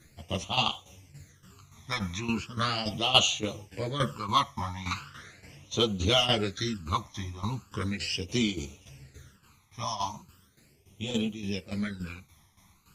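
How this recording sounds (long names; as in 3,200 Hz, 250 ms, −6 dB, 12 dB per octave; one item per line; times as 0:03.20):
phaser sweep stages 12, 0.38 Hz, lowest notch 470–1,700 Hz
tremolo saw down 3.5 Hz, depth 75%
a shimmering, thickened sound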